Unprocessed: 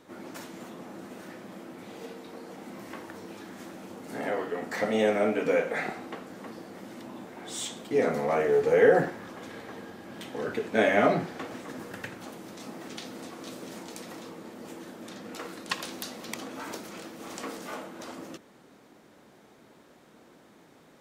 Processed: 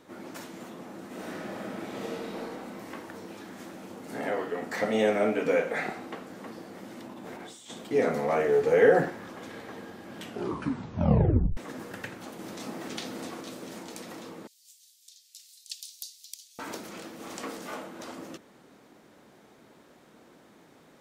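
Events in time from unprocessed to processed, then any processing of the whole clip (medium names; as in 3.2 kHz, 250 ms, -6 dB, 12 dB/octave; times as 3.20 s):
1.07–2.41 s: reverb throw, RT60 2.4 s, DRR -6 dB
7.06–7.70 s: compressor with a negative ratio -45 dBFS
10.16 s: tape stop 1.41 s
12.39–13.41 s: gain +3.5 dB
14.47–16.59 s: inverse Chebyshev high-pass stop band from 970 Hz, stop band 70 dB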